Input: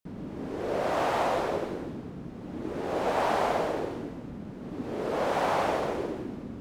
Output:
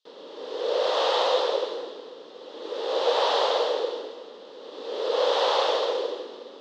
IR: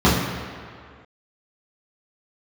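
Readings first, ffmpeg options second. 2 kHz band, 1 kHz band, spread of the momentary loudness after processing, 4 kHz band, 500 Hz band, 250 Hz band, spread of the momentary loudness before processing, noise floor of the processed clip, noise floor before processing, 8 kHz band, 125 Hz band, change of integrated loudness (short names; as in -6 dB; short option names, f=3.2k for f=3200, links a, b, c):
+0.5 dB, +1.5 dB, 20 LU, +14.5 dB, +5.0 dB, -9.5 dB, 13 LU, -45 dBFS, -42 dBFS, +2.5 dB, under -30 dB, +5.0 dB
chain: -filter_complex "[0:a]aexciter=amount=4.5:drive=6.7:freq=3.2k,highpass=f=480:w=0.5412,highpass=f=480:w=1.3066,equalizer=f=490:t=q:w=4:g=9,equalizer=f=700:t=q:w=4:g=-8,equalizer=f=1.5k:t=q:w=4:g=-5,equalizer=f=2.3k:t=q:w=4:g=-7,equalizer=f=3.5k:t=q:w=4:g=3,lowpass=f=4.1k:w=0.5412,lowpass=f=4.1k:w=1.3066,asplit=2[a][b];[1:a]atrim=start_sample=2205,adelay=129[c];[b][c]afir=irnorm=-1:irlink=0,volume=-40dB[d];[a][d]amix=inputs=2:normalize=0,volume=4.5dB"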